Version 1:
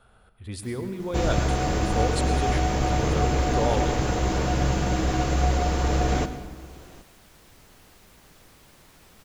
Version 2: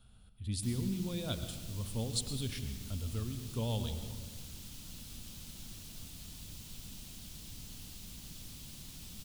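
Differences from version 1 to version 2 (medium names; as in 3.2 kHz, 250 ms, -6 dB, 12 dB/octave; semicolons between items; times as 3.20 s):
first sound +7.0 dB; second sound: muted; master: add high-order bell 870 Hz -15.5 dB 3 oct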